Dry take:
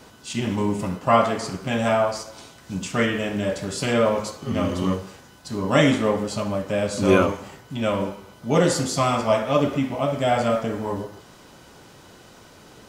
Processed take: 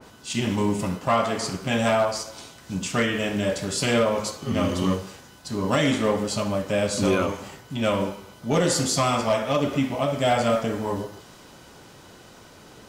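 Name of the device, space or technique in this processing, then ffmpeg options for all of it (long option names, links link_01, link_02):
limiter into clipper: -af "alimiter=limit=-11dB:level=0:latency=1:release=229,asoftclip=type=hard:threshold=-14dB,adynamicequalizer=threshold=0.0112:dfrequency=2300:dqfactor=0.7:tfrequency=2300:tqfactor=0.7:attack=5:release=100:ratio=0.375:range=2:mode=boostabove:tftype=highshelf"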